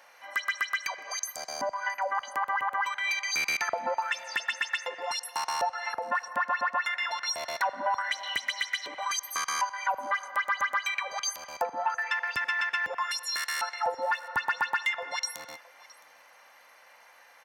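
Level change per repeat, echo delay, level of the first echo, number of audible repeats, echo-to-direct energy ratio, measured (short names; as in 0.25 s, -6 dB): no steady repeat, 0.666 s, -22.5 dB, 1, -22.5 dB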